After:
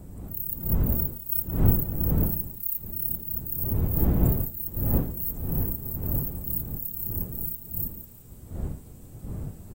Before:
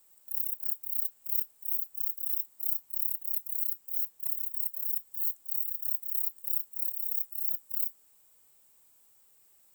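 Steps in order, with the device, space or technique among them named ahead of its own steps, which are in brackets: 0.55–1.91 comb 3.3 ms, depth 47%; feedback echo 0.173 s, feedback 34%, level -12.5 dB; smartphone video outdoors (wind noise 130 Hz -36 dBFS; AGC gain up to 4 dB; gain +3.5 dB; AAC 48 kbps 44100 Hz)

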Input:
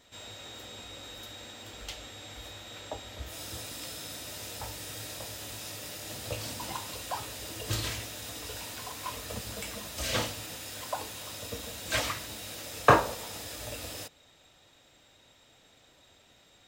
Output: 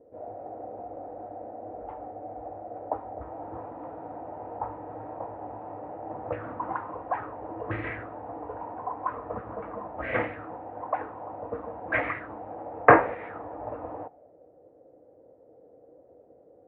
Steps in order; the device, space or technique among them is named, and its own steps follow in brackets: envelope filter bass rig (envelope low-pass 480–2100 Hz up, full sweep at -30 dBFS; speaker cabinet 70–2100 Hz, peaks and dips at 310 Hz +9 dB, 480 Hz +7 dB, 740 Hz +8 dB); gain -1.5 dB

